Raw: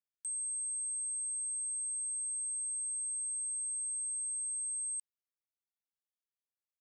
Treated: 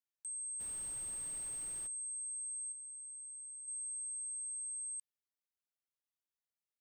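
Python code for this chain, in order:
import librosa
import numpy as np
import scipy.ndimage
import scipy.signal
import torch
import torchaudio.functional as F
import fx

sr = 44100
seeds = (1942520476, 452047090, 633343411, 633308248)

y = fx.dmg_noise_colour(x, sr, seeds[0], colour='pink', level_db=-53.0, at=(0.59, 1.86), fade=0.02)
y = fx.high_shelf(y, sr, hz=7700.0, db=-11.5, at=(2.72, 3.68))
y = F.gain(torch.from_numpy(y), -5.0).numpy()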